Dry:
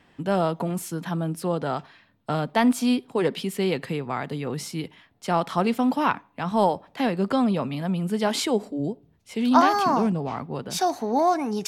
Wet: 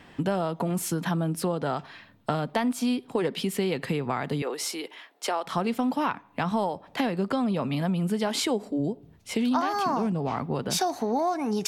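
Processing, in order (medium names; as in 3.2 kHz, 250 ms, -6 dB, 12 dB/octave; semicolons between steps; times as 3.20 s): compression 5:1, threshold -32 dBFS, peak gain reduction 18 dB; 4.42–5.45 s: high-pass 360 Hz 24 dB/octave; trim +7.5 dB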